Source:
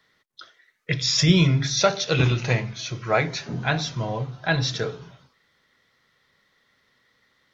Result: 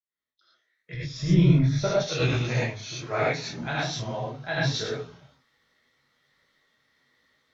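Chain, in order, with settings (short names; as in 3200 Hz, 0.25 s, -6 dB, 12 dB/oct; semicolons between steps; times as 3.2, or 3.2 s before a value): opening faded in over 2.29 s; 0.94–1.96 tilt -3.5 dB/oct; non-linear reverb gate 0.13 s rising, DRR -5.5 dB; detuned doubles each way 43 cents; gain -6 dB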